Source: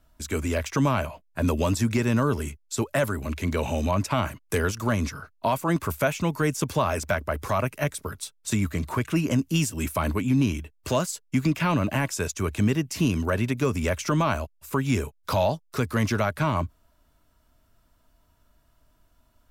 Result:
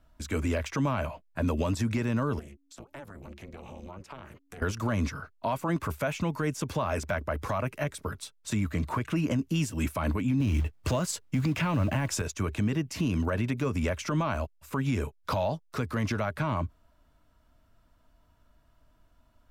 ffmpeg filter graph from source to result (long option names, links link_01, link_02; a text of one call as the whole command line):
ffmpeg -i in.wav -filter_complex "[0:a]asettb=1/sr,asplit=3[link_01][link_02][link_03];[link_01]atrim=end=2.394[link_04];[link_02]atrim=start=2.39:end=4.62,asetpts=PTS-STARTPTS,afade=type=in:duration=0.004:curve=qsin,afade=type=out:start_time=2.226:duration=0.004:curve=qsin,acompressor=threshold=-38dB:ratio=5:attack=3.2:release=140:knee=1:detection=peak,tremolo=f=280:d=1[link_05];[link_03]atrim=start=4.616[link_06];[link_04][link_05]acrossfade=duration=0.004:curve1=hsin:curve2=qsin[link_07];[link_07][link_06]acrossfade=duration=0.004:curve1=qsin:curve2=hsin,asettb=1/sr,asplit=3[link_08][link_09][link_10];[link_08]atrim=end=10.404[link_11];[link_09]atrim=start=10.4:end=12.22,asetpts=PTS-STARTPTS,afade=type=in:duration=0.004:curve=qsin,afade=type=out:start_time=1.816:duration=0.004:curve=qsin,equalizer=frequency=89:width=1.2:gain=7.5,acrusher=bits=6:mode=log:mix=0:aa=0.000001,acontrast=66[link_12];[link_10]atrim=start=12.216[link_13];[link_11][link_12]acrossfade=duration=0.004:curve1=hsin:curve2=qsin[link_14];[link_14][link_13]acrossfade=duration=0.004:curve1=qsin:curve2=hsin,highshelf=frequency=5300:gain=-10.5,bandreject=frequency=390:width=12,alimiter=limit=-19.5dB:level=0:latency=1:release=76" out.wav